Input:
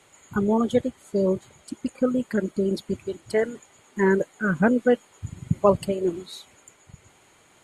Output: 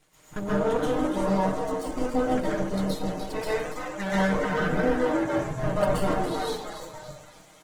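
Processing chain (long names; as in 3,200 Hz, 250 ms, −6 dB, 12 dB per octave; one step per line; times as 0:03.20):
flanger 0.45 Hz, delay 0.1 ms, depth 8.2 ms, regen +88%
echo with shifted repeats 290 ms, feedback 44%, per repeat +79 Hz, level −9 dB
0:02.19–0:04.16: dynamic equaliser 370 Hz, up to −5 dB, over −35 dBFS, Q 0.72
half-wave rectification
comb filter 6.5 ms, depth 99%
brickwall limiter −20 dBFS, peak gain reduction 11 dB
0:04.76–0:05.47: high-pass filter 60 Hz 12 dB per octave
dense smooth reverb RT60 0.56 s, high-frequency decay 0.8×, pre-delay 115 ms, DRR −7 dB
Opus 16 kbit/s 48,000 Hz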